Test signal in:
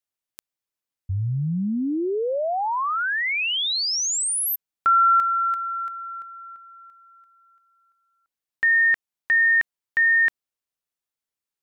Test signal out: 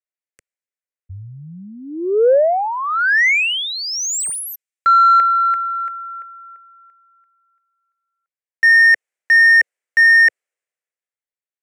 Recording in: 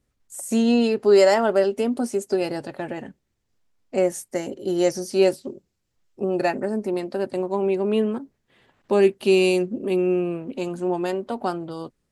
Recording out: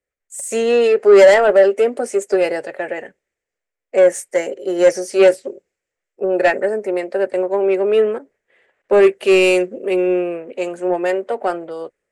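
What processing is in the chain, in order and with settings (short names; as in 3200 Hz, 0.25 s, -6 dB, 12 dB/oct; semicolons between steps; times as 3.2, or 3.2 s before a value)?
ten-band EQ 125 Hz -6 dB, 250 Hz -8 dB, 500 Hz +10 dB, 1000 Hz -8 dB, 2000 Hz +10 dB, 4000 Hz -6 dB, 8000 Hz +11 dB; overdrive pedal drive 18 dB, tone 1500 Hz, clips at -0.5 dBFS; three-band expander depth 40%; gain -1.5 dB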